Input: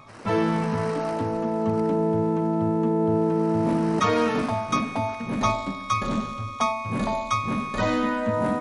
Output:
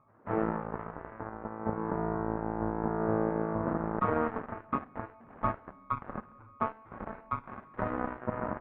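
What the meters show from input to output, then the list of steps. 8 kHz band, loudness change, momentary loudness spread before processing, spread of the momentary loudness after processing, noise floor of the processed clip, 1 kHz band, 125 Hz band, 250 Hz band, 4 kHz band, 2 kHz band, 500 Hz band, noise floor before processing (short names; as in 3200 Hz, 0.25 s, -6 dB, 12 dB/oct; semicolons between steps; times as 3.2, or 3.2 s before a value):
under -40 dB, -10.0 dB, 5 LU, 13 LU, -56 dBFS, -8.5 dB, -10.5 dB, -11.0 dB, under -30 dB, -11.0 dB, -9.5 dB, -36 dBFS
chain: added harmonics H 7 -15 dB, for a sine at -8.5 dBFS; inverse Chebyshev low-pass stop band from 8000 Hz, stop band 80 dB; gain -5 dB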